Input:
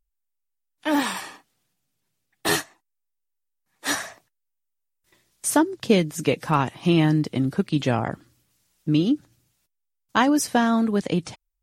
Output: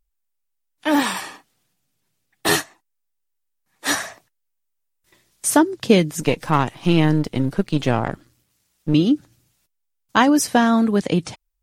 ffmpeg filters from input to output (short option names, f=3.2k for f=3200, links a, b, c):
-filter_complex "[0:a]asettb=1/sr,asplit=3[a][b][c];[a]atrim=end=6.204[d];[b]atrim=start=6.2:end=8.94,asetpts=PTS-STARTPTS,afade=t=in:d=0.004:c=qsin,afade=t=out:st=2.736:d=0.004:c=qsin,aeval=exprs='if(lt(val(0),0),0.447*val(0),val(0))':c=same[e];[c]atrim=start=8.936[f];[d][e]acrossfade=d=0.004:c1=hsin:c2=qsin[g];[g][f]acrossfade=d=0.004:c1=qsin:c2=hsin,volume=4dB"